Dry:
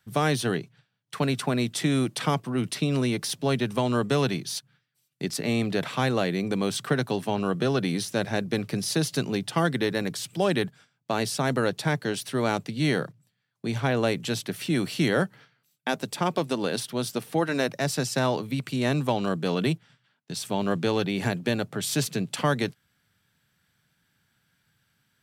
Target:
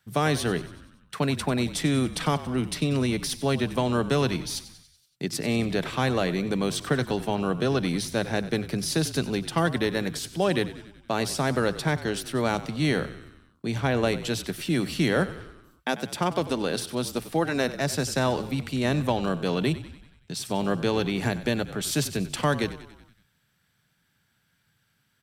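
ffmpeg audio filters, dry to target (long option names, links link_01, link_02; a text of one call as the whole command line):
ffmpeg -i in.wav -filter_complex "[0:a]asplit=7[link_01][link_02][link_03][link_04][link_05][link_06][link_07];[link_02]adelay=94,afreqshift=-41,volume=-15dB[link_08];[link_03]adelay=188,afreqshift=-82,volume=-19.7dB[link_09];[link_04]adelay=282,afreqshift=-123,volume=-24.5dB[link_10];[link_05]adelay=376,afreqshift=-164,volume=-29.2dB[link_11];[link_06]adelay=470,afreqshift=-205,volume=-33.9dB[link_12];[link_07]adelay=564,afreqshift=-246,volume=-38.7dB[link_13];[link_01][link_08][link_09][link_10][link_11][link_12][link_13]amix=inputs=7:normalize=0" out.wav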